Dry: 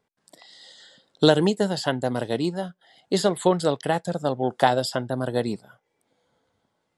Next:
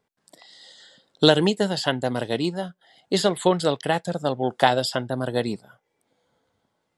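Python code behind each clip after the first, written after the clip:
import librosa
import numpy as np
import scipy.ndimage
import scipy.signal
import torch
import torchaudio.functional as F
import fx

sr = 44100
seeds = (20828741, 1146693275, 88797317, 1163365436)

y = fx.dynamic_eq(x, sr, hz=2800.0, q=0.97, threshold_db=-40.0, ratio=4.0, max_db=6)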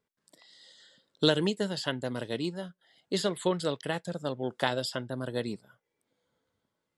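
y = fx.peak_eq(x, sr, hz=760.0, db=-8.5, octaves=0.36)
y = y * 10.0 ** (-7.5 / 20.0)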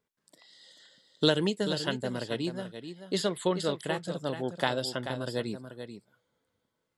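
y = x + 10.0 ** (-9.5 / 20.0) * np.pad(x, (int(435 * sr / 1000.0), 0))[:len(x)]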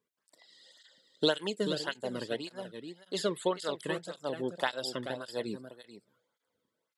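y = fx.flanger_cancel(x, sr, hz=1.8, depth_ms=1.5)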